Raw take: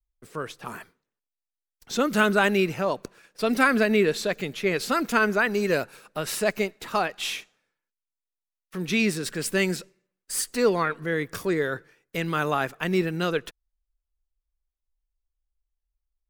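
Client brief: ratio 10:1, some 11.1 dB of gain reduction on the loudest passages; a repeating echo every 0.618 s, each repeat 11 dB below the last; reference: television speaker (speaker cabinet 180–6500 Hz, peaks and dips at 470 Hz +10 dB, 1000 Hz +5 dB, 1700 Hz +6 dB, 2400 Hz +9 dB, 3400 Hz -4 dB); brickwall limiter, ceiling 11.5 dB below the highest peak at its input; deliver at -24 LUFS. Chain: compressor 10:1, threshold -27 dBFS; limiter -24.5 dBFS; speaker cabinet 180–6500 Hz, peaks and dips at 470 Hz +10 dB, 1000 Hz +5 dB, 1700 Hz +6 dB, 2400 Hz +9 dB, 3400 Hz -4 dB; feedback echo 0.618 s, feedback 28%, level -11 dB; gain +7.5 dB

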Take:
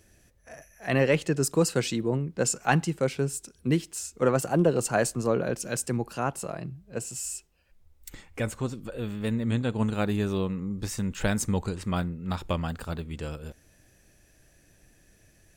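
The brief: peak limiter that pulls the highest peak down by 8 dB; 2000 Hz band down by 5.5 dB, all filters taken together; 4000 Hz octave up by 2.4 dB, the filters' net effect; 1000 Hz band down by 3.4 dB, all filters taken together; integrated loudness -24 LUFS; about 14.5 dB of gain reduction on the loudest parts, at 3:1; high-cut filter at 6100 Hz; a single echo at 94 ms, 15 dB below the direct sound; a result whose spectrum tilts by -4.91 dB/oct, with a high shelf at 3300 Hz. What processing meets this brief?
LPF 6100 Hz; bell 1000 Hz -3.5 dB; bell 2000 Hz -8.5 dB; high shelf 3300 Hz +4 dB; bell 4000 Hz +4 dB; compressor 3:1, threshold -39 dBFS; limiter -30.5 dBFS; echo 94 ms -15 dB; gain +17.5 dB

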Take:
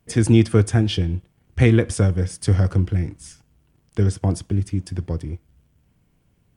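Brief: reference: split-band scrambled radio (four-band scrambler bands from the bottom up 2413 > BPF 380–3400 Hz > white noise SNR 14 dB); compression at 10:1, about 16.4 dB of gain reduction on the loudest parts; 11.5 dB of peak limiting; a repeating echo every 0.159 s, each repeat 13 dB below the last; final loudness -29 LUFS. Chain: compressor 10:1, threshold -26 dBFS; limiter -25.5 dBFS; feedback echo 0.159 s, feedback 22%, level -13 dB; four-band scrambler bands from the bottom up 2413; BPF 380–3400 Hz; white noise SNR 14 dB; gain +4.5 dB

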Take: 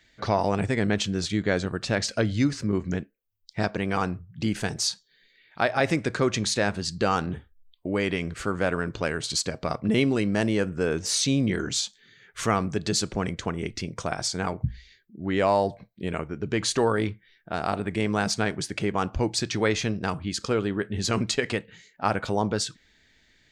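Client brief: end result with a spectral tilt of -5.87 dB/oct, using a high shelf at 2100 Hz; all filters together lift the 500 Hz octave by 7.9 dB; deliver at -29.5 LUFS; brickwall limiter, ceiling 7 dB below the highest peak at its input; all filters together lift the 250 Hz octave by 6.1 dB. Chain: bell 250 Hz +5.5 dB; bell 500 Hz +8.5 dB; high shelf 2100 Hz -5 dB; gain -5.5 dB; limiter -16.5 dBFS

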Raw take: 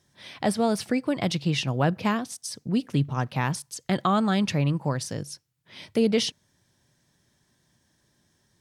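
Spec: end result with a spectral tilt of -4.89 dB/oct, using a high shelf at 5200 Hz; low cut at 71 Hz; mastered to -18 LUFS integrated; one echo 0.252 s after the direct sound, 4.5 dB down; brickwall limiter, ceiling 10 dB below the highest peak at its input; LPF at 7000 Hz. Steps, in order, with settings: HPF 71 Hz; LPF 7000 Hz; high shelf 5200 Hz +5.5 dB; limiter -20 dBFS; echo 0.252 s -4.5 dB; gain +11.5 dB

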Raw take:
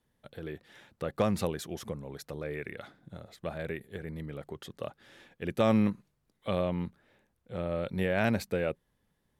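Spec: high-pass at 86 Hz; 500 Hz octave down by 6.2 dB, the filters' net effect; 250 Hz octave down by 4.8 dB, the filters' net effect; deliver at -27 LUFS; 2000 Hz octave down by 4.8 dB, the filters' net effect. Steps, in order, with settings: HPF 86 Hz; bell 250 Hz -5 dB; bell 500 Hz -6 dB; bell 2000 Hz -6 dB; gain +11 dB

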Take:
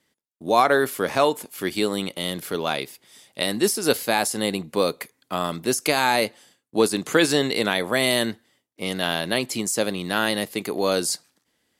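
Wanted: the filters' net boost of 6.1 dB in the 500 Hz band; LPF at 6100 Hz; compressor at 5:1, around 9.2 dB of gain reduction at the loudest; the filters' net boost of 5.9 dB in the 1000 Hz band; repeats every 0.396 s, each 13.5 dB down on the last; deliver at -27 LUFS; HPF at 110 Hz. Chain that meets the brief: HPF 110 Hz; LPF 6100 Hz; bell 500 Hz +6 dB; bell 1000 Hz +5.5 dB; compressor 5:1, threshold -18 dBFS; feedback echo 0.396 s, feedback 21%, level -13.5 dB; gain -2.5 dB

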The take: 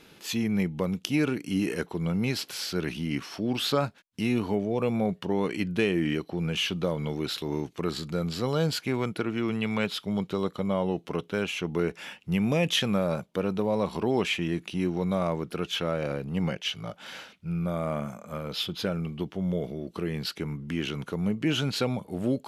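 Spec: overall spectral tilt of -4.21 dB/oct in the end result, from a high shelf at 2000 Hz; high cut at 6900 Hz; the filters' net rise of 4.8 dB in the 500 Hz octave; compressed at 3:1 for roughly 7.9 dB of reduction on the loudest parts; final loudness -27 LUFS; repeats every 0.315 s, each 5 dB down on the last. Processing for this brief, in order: LPF 6900 Hz; bell 500 Hz +5.5 dB; high shelf 2000 Hz +5 dB; compressor 3:1, threshold -28 dBFS; feedback echo 0.315 s, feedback 56%, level -5 dB; gain +3 dB

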